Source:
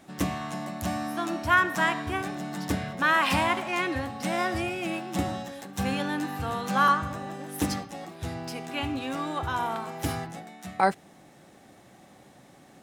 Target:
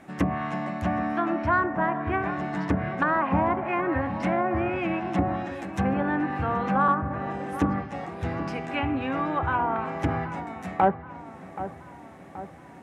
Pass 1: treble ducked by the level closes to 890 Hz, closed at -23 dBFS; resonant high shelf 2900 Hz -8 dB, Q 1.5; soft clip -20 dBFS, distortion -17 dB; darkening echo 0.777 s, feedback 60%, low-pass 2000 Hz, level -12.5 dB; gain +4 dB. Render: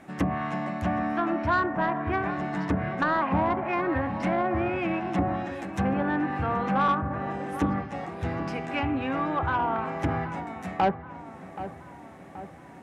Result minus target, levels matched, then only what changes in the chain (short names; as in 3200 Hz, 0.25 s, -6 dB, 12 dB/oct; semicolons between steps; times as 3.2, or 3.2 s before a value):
soft clip: distortion +14 dB
change: soft clip -11 dBFS, distortion -31 dB